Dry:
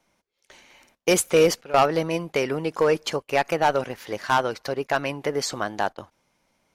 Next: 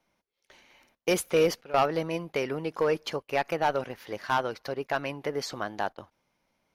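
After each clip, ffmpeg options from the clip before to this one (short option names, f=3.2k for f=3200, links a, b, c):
-af "equalizer=f=7.8k:t=o:w=0.57:g=-9,volume=-5.5dB"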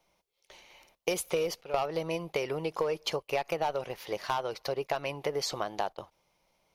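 -af "acompressor=threshold=-29dB:ratio=12,equalizer=f=100:t=o:w=0.67:g=-7,equalizer=f=250:t=o:w=0.67:g=-12,equalizer=f=1.6k:t=o:w=0.67:g=-9,volume=5dB"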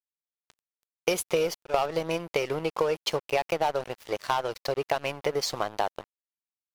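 -af "aeval=exprs='sgn(val(0))*max(abs(val(0))-0.00668,0)':c=same,volume=5.5dB"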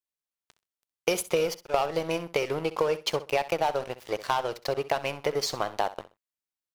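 -af "aecho=1:1:64|128:0.168|0.0353"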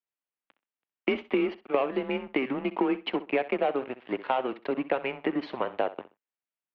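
-af "highpass=f=310:t=q:w=0.5412,highpass=f=310:t=q:w=1.307,lowpass=f=3.1k:t=q:w=0.5176,lowpass=f=3.1k:t=q:w=0.7071,lowpass=f=3.1k:t=q:w=1.932,afreqshift=-130"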